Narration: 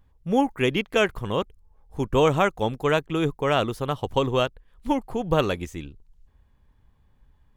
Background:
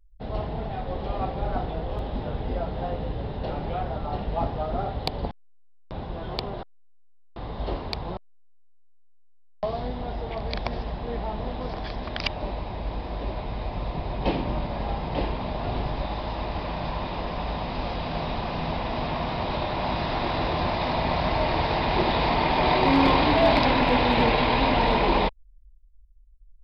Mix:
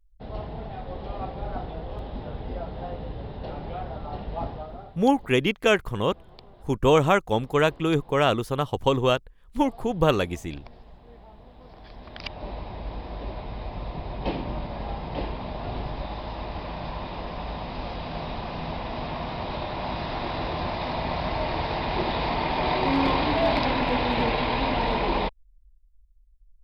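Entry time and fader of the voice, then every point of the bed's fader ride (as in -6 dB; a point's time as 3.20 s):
4.70 s, +1.0 dB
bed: 4.51 s -4.5 dB
4.98 s -18.5 dB
11.52 s -18.5 dB
12.54 s -3.5 dB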